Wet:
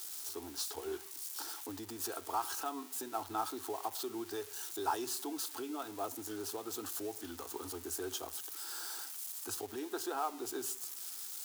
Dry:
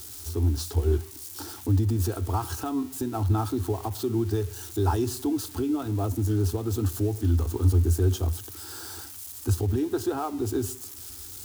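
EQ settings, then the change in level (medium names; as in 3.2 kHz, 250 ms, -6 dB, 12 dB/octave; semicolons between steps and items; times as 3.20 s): high-pass 630 Hz 12 dB/octave; -3.0 dB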